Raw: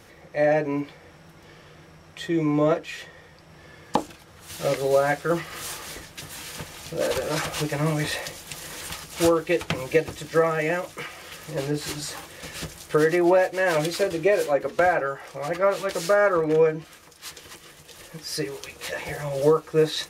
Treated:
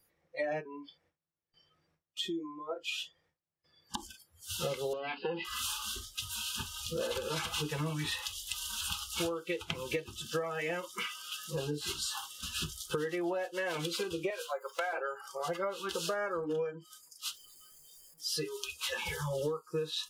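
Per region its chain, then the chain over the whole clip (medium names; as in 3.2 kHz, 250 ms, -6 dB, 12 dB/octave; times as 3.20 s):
0.60–4.03 s: compression 4:1, threshold -31 dBFS + gate with hold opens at -37 dBFS, closes at -45 dBFS
4.93–5.45 s: comb filter that takes the minimum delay 0.45 ms + compression 16:1, threshold -27 dBFS + cabinet simulation 110–4700 Hz, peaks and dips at 270 Hz +7 dB, 460 Hz +8 dB, 780 Hz +7 dB, 1.3 kHz -5 dB, 2.7 kHz +7 dB
14.30–14.93 s: high-pass 750 Hz + word length cut 10-bit, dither none
17.35–18.20 s: one-bit comparator + treble shelf 2.2 kHz -9 dB
whole clip: spectral noise reduction 27 dB; dynamic bell 3.2 kHz, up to +7 dB, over -49 dBFS, Q 2.5; compression 8:1, threshold -32 dBFS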